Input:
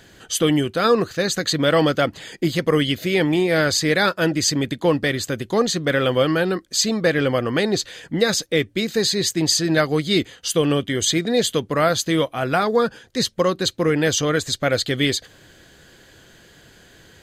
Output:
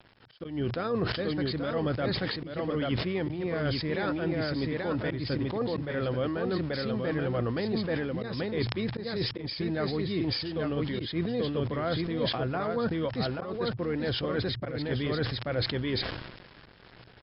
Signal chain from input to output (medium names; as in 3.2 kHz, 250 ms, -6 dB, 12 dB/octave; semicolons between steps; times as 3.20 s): treble shelf 2.4 kHz -12 dB; delay 834 ms -4 dB; reverse; compression 16:1, threshold -27 dBFS, peak gain reduction 17 dB; reverse; small samples zeroed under -46 dBFS; harmony voices -12 st -13 dB; slow attack 184 ms; brick-wall FIR low-pass 5.4 kHz; peaking EQ 120 Hz +6 dB 0.29 oct; decay stretcher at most 49 dB/s